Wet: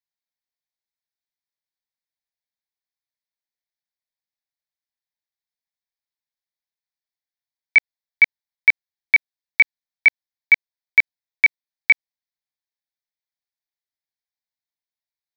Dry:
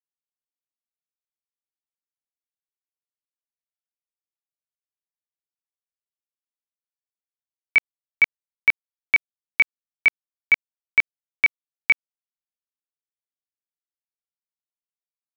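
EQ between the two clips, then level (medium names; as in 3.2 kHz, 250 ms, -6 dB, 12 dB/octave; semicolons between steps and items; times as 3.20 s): peaking EQ 2.9 kHz +7 dB 2.2 oct; static phaser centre 1.9 kHz, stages 8; 0.0 dB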